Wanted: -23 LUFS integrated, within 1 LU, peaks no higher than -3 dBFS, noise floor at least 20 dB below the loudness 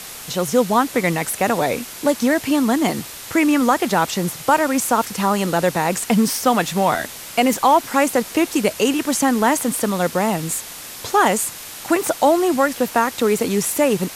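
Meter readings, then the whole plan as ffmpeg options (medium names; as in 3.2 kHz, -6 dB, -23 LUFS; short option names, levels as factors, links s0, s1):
noise floor -35 dBFS; noise floor target -39 dBFS; loudness -19.0 LUFS; peak level -3.0 dBFS; loudness target -23.0 LUFS
-> -af "afftdn=nr=6:nf=-35"
-af "volume=0.631"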